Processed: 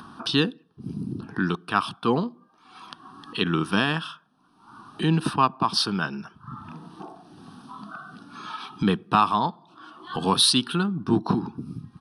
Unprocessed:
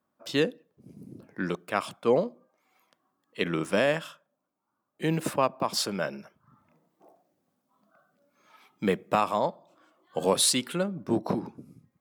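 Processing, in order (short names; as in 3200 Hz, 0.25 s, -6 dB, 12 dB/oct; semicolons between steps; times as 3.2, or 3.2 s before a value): upward compressor, threshold -28 dBFS; fixed phaser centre 2100 Hz, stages 6; downsampling 22050 Hz; gain +8.5 dB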